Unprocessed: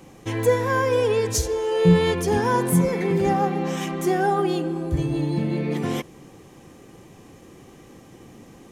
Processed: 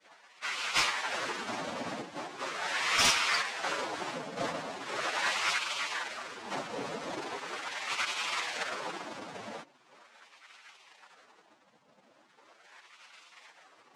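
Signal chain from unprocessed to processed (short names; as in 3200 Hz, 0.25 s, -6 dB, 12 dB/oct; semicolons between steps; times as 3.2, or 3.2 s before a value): noise vocoder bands 1; wah 0.64 Hz 360–1800 Hz, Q 13; sine folder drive 9 dB, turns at -16.5 dBFS; time stretch by phase-locked vocoder 1.6×; spectral gate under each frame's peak -15 dB weak; gain +5 dB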